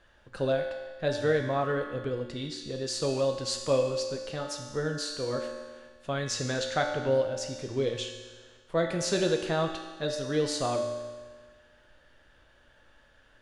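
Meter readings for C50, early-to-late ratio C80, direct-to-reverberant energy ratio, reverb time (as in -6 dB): 5.0 dB, 6.5 dB, 2.0 dB, 1.5 s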